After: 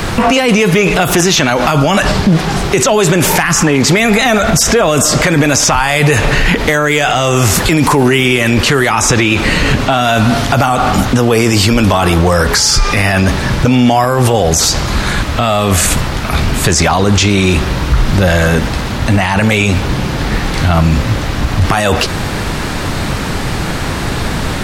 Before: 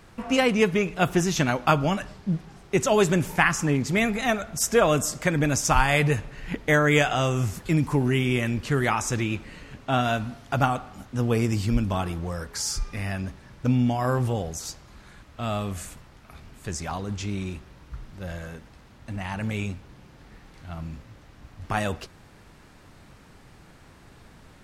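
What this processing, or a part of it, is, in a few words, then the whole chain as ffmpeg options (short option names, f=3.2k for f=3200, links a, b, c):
mastering chain: -filter_complex "[0:a]equalizer=f=3.9k:t=o:w=0.77:g=2.5,acrossover=split=350|4900[a][b][c];[a]acompressor=threshold=-37dB:ratio=4[d];[b]acompressor=threshold=-27dB:ratio=4[e];[c]acompressor=threshold=-40dB:ratio=4[f];[d][e][f]amix=inputs=3:normalize=0,acompressor=threshold=-32dB:ratio=2,asoftclip=type=tanh:threshold=-20dB,asoftclip=type=hard:threshold=-23dB,alimiter=level_in=35dB:limit=-1dB:release=50:level=0:latency=1,volume=-1dB"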